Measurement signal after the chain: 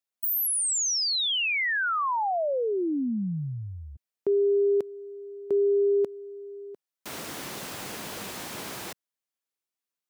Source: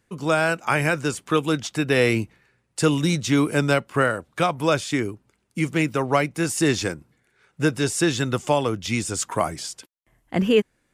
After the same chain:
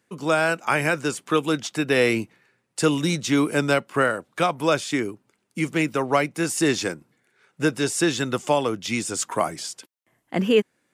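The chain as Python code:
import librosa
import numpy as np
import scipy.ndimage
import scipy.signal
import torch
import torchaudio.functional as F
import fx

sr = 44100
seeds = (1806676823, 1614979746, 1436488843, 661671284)

y = scipy.signal.sosfilt(scipy.signal.butter(2, 170.0, 'highpass', fs=sr, output='sos'), x)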